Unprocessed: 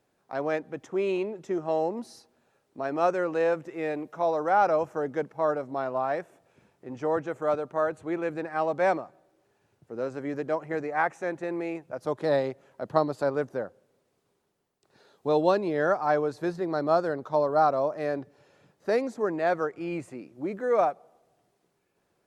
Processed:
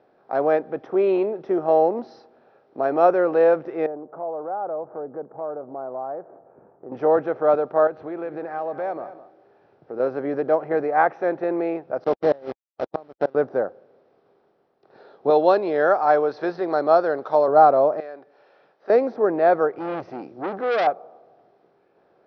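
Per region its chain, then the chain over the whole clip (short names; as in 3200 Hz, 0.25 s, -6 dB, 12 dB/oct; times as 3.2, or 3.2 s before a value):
3.86–6.92 LPF 1200 Hz 24 dB/oct + compressor 2:1, threshold -48 dBFS
7.87–10 compressor 3:1, threshold -38 dBFS + echo 0.207 s -16 dB
12.04–13.35 level-crossing sampler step -30 dBFS + HPF 54 Hz + flipped gate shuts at -16 dBFS, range -31 dB
15.3–17.48 tilt +2.5 dB/oct + mismatched tape noise reduction encoder only
18–18.9 HPF 1400 Hz 6 dB/oct + compressor 1.5:1, threshold -59 dBFS
19.78–20.87 tone controls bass +4 dB, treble +13 dB + core saturation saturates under 4000 Hz
whole clip: per-bin compression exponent 0.6; steep low-pass 5900 Hz 96 dB/oct; spectral expander 1.5:1; gain +4 dB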